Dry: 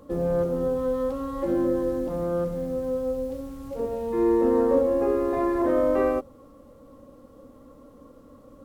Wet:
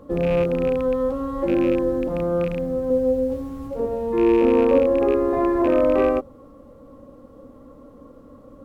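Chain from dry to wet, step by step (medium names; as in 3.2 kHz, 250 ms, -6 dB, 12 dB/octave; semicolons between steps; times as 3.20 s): rattle on loud lows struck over -29 dBFS, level -24 dBFS; treble shelf 2.7 kHz -9 dB; 2.89–3.67 s: doubling 12 ms -2 dB; trim +4.5 dB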